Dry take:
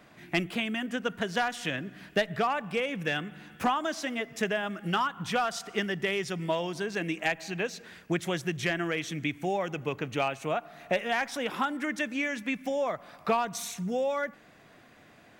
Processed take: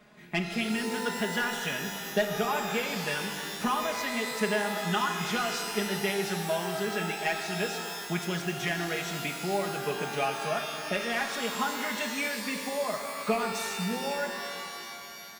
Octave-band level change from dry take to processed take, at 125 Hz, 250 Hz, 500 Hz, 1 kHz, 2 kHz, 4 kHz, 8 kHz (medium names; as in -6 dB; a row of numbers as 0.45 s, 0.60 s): 0.0 dB, -0.5 dB, -0.5 dB, 0.0 dB, +0.5 dB, +3.0 dB, +6.0 dB